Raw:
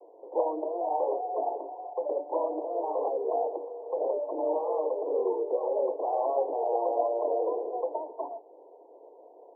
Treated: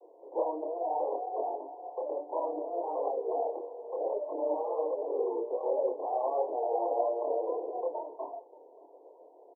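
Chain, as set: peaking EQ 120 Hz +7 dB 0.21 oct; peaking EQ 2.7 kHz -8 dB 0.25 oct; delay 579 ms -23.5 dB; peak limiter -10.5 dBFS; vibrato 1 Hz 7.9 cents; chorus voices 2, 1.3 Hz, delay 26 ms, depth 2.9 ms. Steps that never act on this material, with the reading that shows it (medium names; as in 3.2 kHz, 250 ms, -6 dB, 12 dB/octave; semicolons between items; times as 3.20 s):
peaking EQ 120 Hz: input has nothing below 270 Hz; peaking EQ 2.7 kHz: input has nothing above 1.1 kHz; peak limiter -10.5 dBFS: peak at its input -14.5 dBFS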